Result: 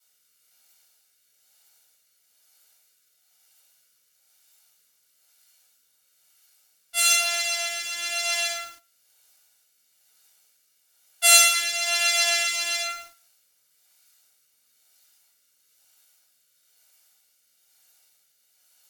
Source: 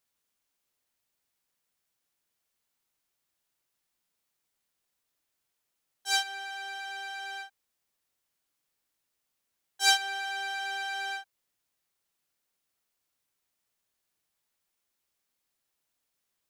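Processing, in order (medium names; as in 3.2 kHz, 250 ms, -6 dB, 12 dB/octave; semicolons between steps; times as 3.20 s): comb filter that takes the minimum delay 1.2 ms; in parallel at +2 dB: compressor with a negative ratio -31 dBFS, ratio -0.5; on the sum: high-pass 700 Hz 6 dB/octave; simulated room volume 37 m³, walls mixed, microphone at 2.1 m; rotary cabinet horn 1.2 Hz; wide varispeed 0.873×; treble shelf 2.9 kHz +10 dB; bit-crushed delay 110 ms, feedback 35%, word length 6-bit, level -8.5 dB; trim -3.5 dB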